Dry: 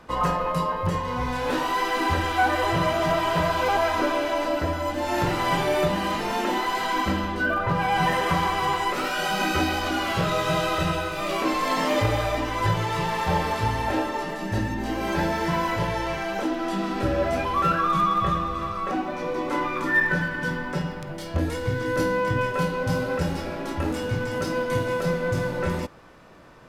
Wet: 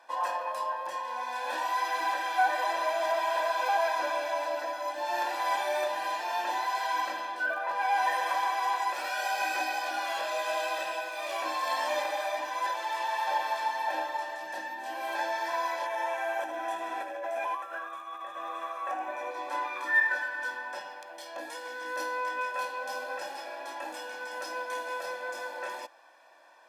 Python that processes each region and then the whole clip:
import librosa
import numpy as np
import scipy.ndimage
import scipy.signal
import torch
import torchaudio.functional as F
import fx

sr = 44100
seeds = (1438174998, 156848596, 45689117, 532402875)

y = fx.chain(x, sr, fx.over_compress(threshold_db=-27.0, ratio=-1.0),
    fx.peak_eq(hz=4500.0, db=-13.5, octaves=0.57),
    fx.echo_single(ms=79, db=-9.0), at=(15.86, 19.31))
y = scipy.signal.sosfilt(scipy.signal.butter(6, 380.0, 'highpass', fs=sr, output='sos'), y)
y = fx.notch(y, sr, hz=2700.0, q=25.0)
y = y + 0.91 * np.pad(y, (int(1.2 * sr / 1000.0), 0))[:len(y)]
y = y * librosa.db_to_amplitude(-8.0)